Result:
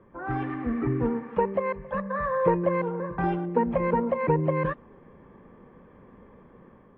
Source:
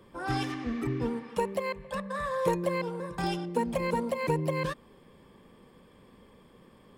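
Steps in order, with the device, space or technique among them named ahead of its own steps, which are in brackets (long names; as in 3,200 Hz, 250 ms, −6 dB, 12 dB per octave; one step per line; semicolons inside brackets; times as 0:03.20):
action camera in a waterproof case (low-pass filter 1,900 Hz 24 dB per octave; automatic gain control gain up to 5 dB; AAC 48 kbit/s 24,000 Hz)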